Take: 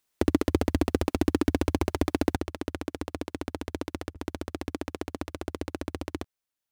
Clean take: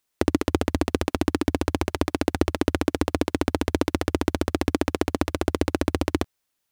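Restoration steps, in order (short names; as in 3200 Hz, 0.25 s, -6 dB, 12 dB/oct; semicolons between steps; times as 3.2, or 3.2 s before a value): clip repair -11.5 dBFS; interpolate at 1.79/4.14, 12 ms; gain 0 dB, from 2.36 s +11 dB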